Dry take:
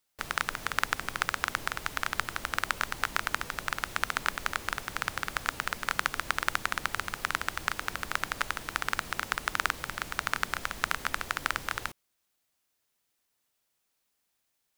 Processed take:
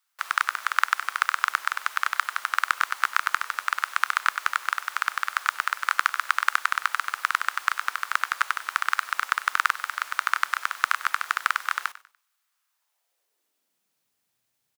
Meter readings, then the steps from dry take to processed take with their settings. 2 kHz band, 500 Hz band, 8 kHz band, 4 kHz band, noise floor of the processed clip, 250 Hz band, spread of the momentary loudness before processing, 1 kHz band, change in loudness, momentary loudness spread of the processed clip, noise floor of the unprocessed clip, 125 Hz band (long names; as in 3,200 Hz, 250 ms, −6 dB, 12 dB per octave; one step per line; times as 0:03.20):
+6.0 dB, −9.5 dB, +1.5 dB, +2.0 dB, −77 dBFS, below −20 dB, 3 LU, +7.5 dB, +6.0 dB, 4 LU, −78 dBFS, below −35 dB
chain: echo with shifted repeats 97 ms, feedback 32%, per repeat +45 Hz, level −17 dB
high-pass filter sweep 1,200 Hz → 110 Hz, 0:12.68–0:14.14
level +1 dB